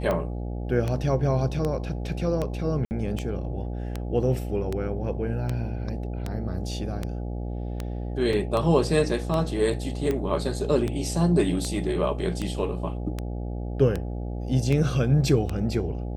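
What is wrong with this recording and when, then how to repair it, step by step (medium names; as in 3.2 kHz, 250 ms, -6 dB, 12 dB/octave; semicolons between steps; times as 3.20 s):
buzz 60 Hz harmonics 14 -31 dBFS
tick 78 rpm -15 dBFS
2.85–2.91 s: dropout 59 ms
8.33 s: dropout 3.2 ms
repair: de-click; de-hum 60 Hz, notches 14; interpolate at 2.85 s, 59 ms; interpolate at 8.33 s, 3.2 ms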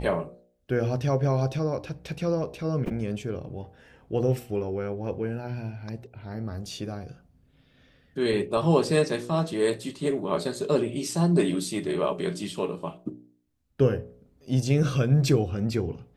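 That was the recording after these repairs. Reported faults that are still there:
nothing left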